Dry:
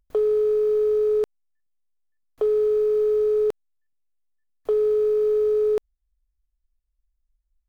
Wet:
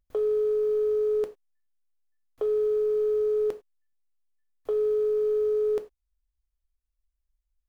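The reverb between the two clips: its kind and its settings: gated-style reverb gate 120 ms falling, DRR 8 dB; trim -5 dB

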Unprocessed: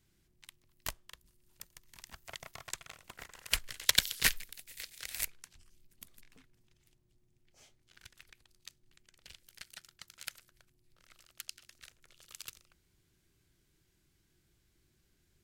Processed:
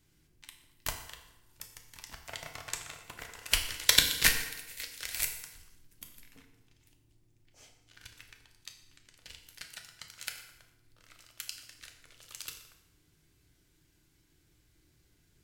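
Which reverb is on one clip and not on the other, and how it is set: FDN reverb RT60 1 s, low-frequency decay 0.9×, high-frequency decay 0.8×, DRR 3 dB; trim +3 dB

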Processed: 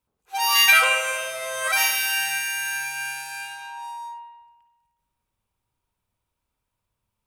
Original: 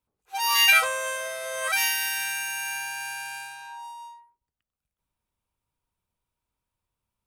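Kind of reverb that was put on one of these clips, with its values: spring tank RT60 1.2 s, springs 47/56 ms, chirp 40 ms, DRR 4.5 dB; trim +3 dB

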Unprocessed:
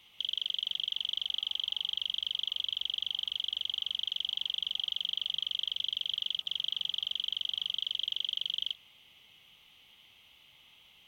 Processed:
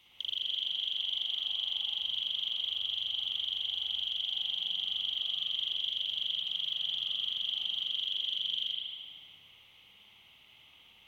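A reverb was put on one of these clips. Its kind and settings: spring tank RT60 1.6 s, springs 57 ms, chirp 40 ms, DRR -3 dB; trim -3 dB

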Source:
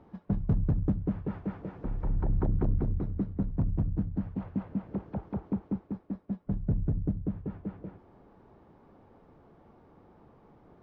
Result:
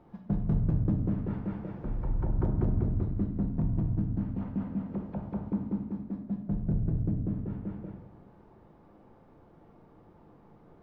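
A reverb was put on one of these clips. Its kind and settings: simulated room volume 270 m³, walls mixed, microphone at 0.82 m; trim -2 dB

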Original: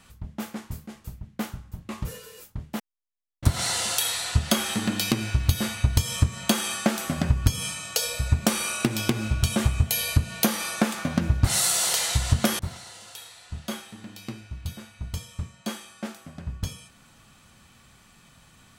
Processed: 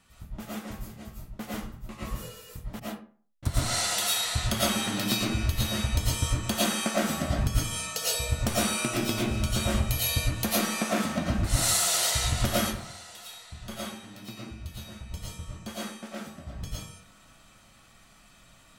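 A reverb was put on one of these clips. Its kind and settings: algorithmic reverb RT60 0.45 s, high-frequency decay 0.6×, pre-delay 70 ms, DRR -7.5 dB; trim -8.5 dB

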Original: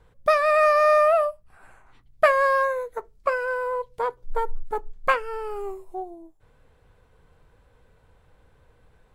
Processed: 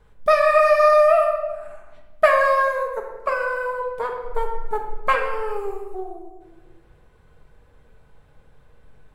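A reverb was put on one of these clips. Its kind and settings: simulated room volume 810 m³, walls mixed, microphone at 1.4 m

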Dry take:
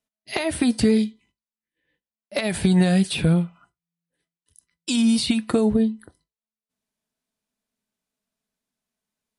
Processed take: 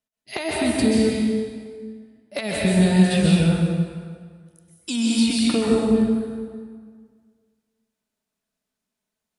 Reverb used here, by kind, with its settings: plate-style reverb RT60 1.8 s, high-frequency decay 0.75×, pre-delay 115 ms, DRR -4.5 dB; trim -3.5 dB

